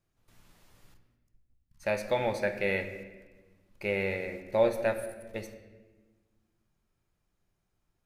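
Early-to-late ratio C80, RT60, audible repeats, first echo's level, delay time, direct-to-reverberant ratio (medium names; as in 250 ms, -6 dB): 11.0 dB, 1.2 s, no echo, no echo, no echo, 7.0 dB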